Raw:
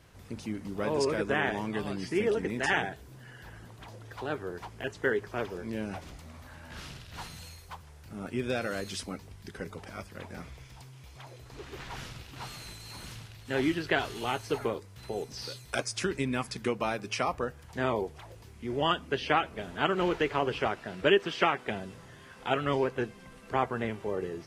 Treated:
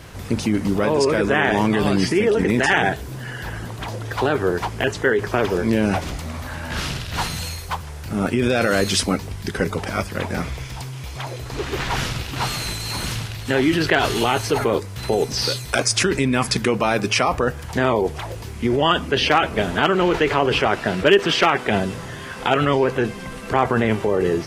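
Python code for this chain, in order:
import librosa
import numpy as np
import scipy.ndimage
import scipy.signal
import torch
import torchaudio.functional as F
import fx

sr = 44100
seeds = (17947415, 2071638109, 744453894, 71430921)

p1 = fx.over_compress(x, sr, threshold_db=-35.0, ratio=-0.5)
p2 = x + F.gain(torch.from_numpy(p1), 0.5).numpy()
p3 = np.clip(p2, -10.0 ** (-13.0 / 20.0), 10.0 ** (-13.0 / 20.0))
y = F.gain(torch.from_numpy(p3), 9.0).numpy()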